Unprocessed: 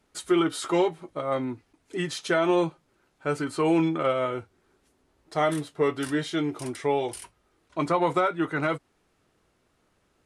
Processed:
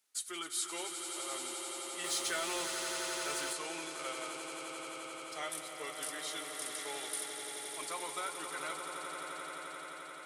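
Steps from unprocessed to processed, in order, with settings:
first difference
echo that builds up and dies away 87 ms, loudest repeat 8, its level −10 dB
0:02.04–0:03.53: power curve on the samples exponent 0.7

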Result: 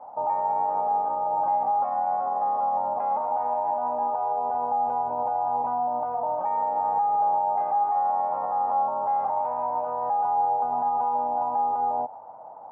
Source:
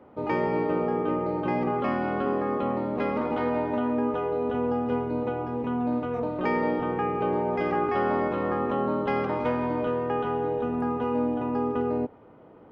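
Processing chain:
high-pass filter 92 Hz
low shelf with overshoot 510 Hz −10 dB, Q 3
downward compressor, threshold −30 dBFS, peak gain reduction 9.5 dB
brickwall limiter −28 dBFS, peak gain reduction 7.5 dB
low-pass with resonance 860 Hz, resonance Q 5.3

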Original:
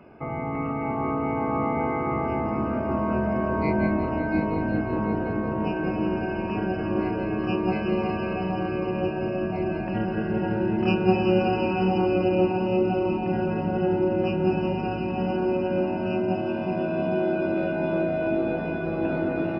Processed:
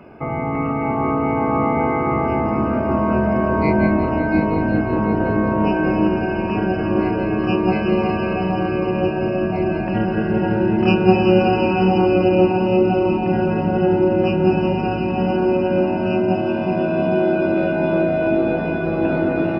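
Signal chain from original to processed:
0:05.17–0:06.08: double-tracking delay 29 ms −7 dB
level +7 dB

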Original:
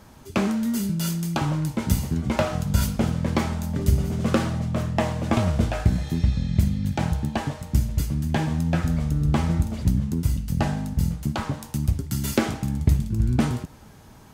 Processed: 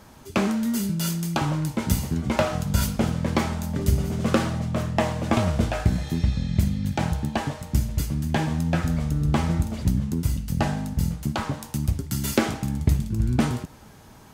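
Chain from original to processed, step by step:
low-shelf EQ 220 Hz −3.5 dB
level +1.5 dB

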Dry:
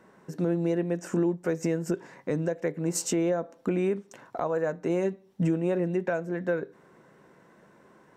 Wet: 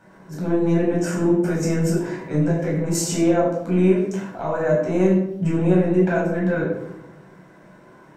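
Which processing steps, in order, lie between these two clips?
transient designer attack −8 dB, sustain +5 dB
convolution reverb RT60 0.70 s, pre-delay 11 ms, DRR −5 dB

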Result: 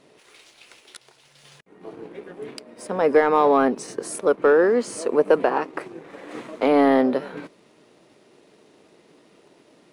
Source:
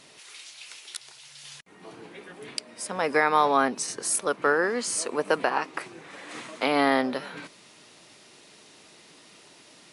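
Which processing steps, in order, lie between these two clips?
leveller curve on the samples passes 1
drawn EQ curve 110 Hz 0 dB, 450 Hz +7 dB, 800 Hz 0 dB, 5,400 Hz −11 dB

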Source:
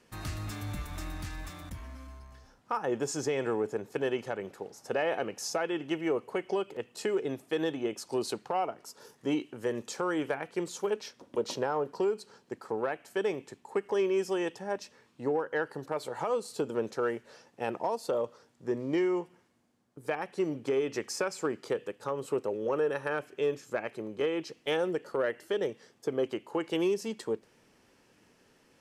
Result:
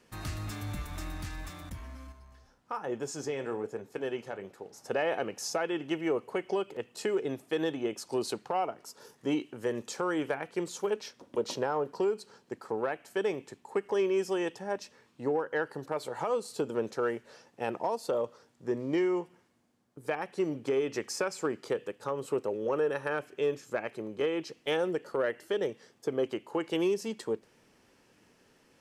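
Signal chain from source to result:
0:02.12–0:04.73: flanger 1.2 Hz, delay 7.8 ms, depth 6.3 ms, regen −67%

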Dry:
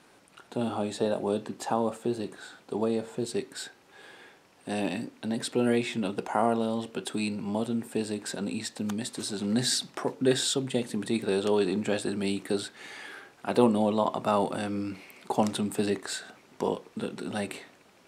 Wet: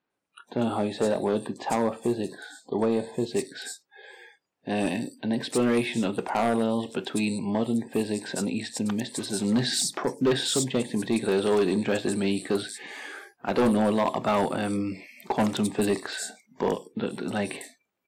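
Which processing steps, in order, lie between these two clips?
multiband delay without the direct sound lows, highs 100 ms, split 4,800 Hz
hard clipping −21.5 dBFS, distortion −12 dB
noise reduction from a noise print of the clip's start 28 dB
level +4 dB

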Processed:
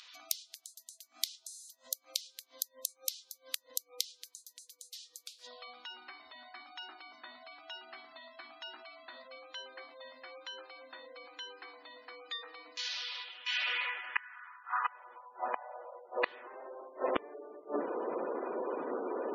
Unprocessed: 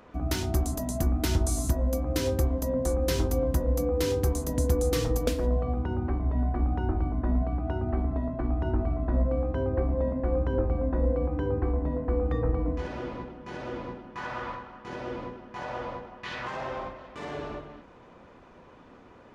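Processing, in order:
high-pass filter sweep 4,000 Hz → 400 Hz, 0:13.02–0:16.45
gate with flip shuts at −30 dBFS, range −29 dB
in parallel at −8.5 dB: bit reduction 5 bits
on the sum: gate on every frequency bin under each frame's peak −20 dB strong
level +13 dB

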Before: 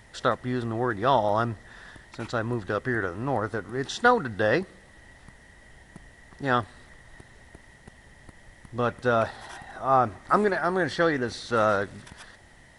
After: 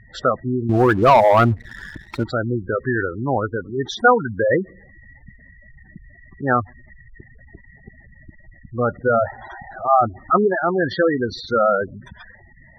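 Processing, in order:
gate on every frequency bin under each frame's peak −10 dB strong
0:00.69–0:02.24: leveller curve on the samples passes 2
level +7 dB

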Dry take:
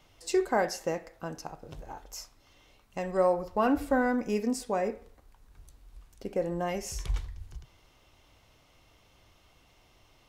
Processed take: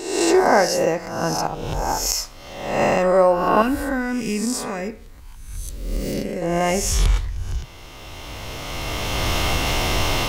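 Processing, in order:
peak hold with a rise ahead of every peak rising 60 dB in 1.03 s
camcorder AGC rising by 13 dB per second
0:03.62–0:06.42: parametric band 640 Hz −13 dB 2.1 octaves
level +8.5 dB

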